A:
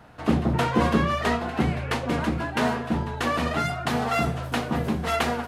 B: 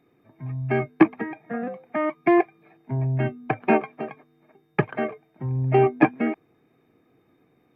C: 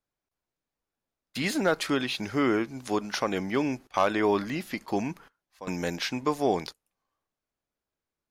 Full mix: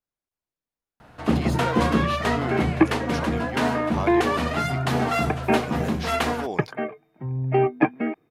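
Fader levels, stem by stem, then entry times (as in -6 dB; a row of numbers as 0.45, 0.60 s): +0.5, -2.0, -6.0 dB; 1.00, 1.80, 0.00 s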